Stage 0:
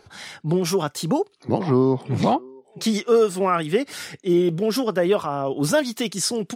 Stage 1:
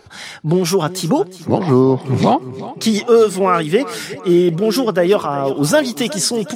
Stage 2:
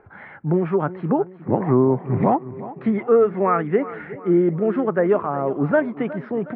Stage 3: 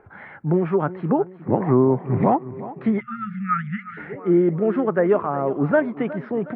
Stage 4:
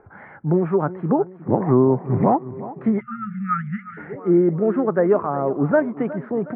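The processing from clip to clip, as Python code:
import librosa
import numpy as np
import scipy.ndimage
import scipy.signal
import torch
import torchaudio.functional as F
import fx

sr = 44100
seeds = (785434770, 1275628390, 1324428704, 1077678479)

y1 = fx.echo_feedback(x, sr, ms=364, feedback_pct=47, wet_db=-16)
y1 = y1 * 10.0 ** (6.0 / 20.0)
y2 = scipy.signal.sosfilt(scipy.signal.butter(6, 2000.0, 'lowpass', fs=sr, output='sos'), y1)
y2 = y2 * 10.0 ** (-4.5 / 20.0)
y3 = fx.spec_erase(y2, sr, start_s=3.0, length_s=0.98, low_hz=220.0, high_hz=1200.0)
y4 = scipy.signal.sosfilt(scipy.signal.butter(2, 1600.0, 'lowpass', fs=sr, output='sos'), y3)
y4 = y4 * 10.0 ** (1.0 / 20.0)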